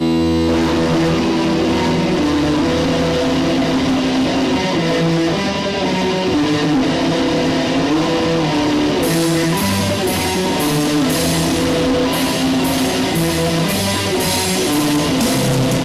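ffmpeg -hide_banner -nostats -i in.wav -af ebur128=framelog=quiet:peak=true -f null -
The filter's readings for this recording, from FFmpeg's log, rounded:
Integrated loudness:
  I:         -15.9 LUFS
  Threshold: -25.9 LUFS
Loudness range:
  LRA:         0.5 LU
  Threshold: -35.9 LUFS
  LRA low:   -16.2 LUFS
  LRA high:  -15.7 LUFS
True peak:
  Peak:      -10.7 dBFS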